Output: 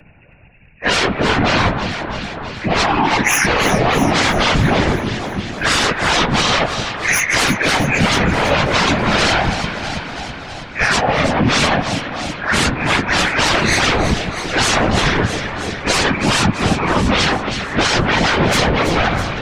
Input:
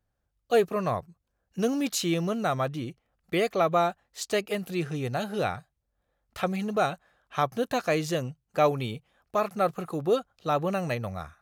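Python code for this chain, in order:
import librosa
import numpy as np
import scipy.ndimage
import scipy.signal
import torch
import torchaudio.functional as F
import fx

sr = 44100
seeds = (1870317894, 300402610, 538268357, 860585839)

y = fx.freq_compress(x, sr, knee_hz=1400.0, ratio=4.0)
y = fx.peak_eq(y, sr, hz=1300.0, db=-10.5, octaves=0.25)
y = fx.rider(y, sr, range_db=5, speed_s=0.5)
y = fx.fold_sine(y, sr, drive_db=19, ceiling_db=-13.0)
y = fx.stretch_vocoder_free(y, sr, factor=1.7)
y = fx.echo_alternate(y, sr, ms=163, hz=1500.0, feedback_pct=75, wet_db=-8.5)
y = fx.whisperise(y, sr, seeds[0])
y = fx.rev_spring(y, sr, rt60_s=3.1, pass_ms=(48,), chirp_ms=50, drr_db=17.0)
y = fx.band_squash(y, sr, depth_pct=40)
y = y * librosa.db_to_amplitude(3.5)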